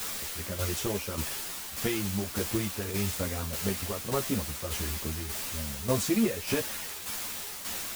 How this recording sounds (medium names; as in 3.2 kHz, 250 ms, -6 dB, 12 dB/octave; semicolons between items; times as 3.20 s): a quantiser's noise floor 6-bit, dither triangular; tremolo saw down 1.7 Hz, depth 55%; a shimmering, thickened sound